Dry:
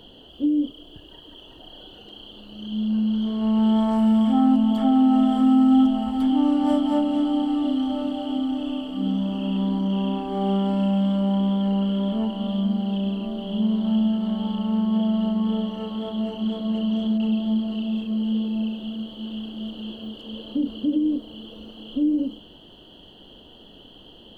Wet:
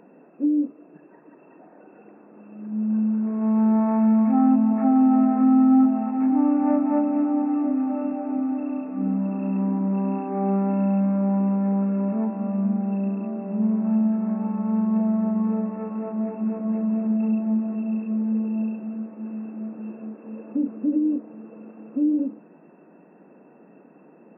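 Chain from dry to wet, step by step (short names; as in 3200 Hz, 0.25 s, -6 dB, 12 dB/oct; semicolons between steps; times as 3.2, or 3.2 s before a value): FFT band-pass 150–2700 Hz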